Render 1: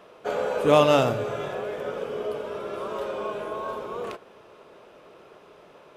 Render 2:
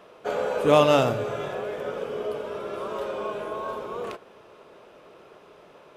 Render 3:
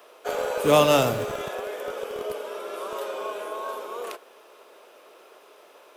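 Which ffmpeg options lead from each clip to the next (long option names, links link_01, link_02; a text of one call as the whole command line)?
ffmpeg -i in.wav -af anull out.wav
ffmpeg -i in.wav -filter_complex "[0:a]aemphasis=mode=production:type=50fm,acrossover=split=300|670|1600[link_01][link_02][link_03][link_04];[link_01]acrusher=bits=5:mix=0:aa=0.000001[link_05];[link_05][link_02][link_03][link_04]amix=inputs=4:normalize=0" out.wav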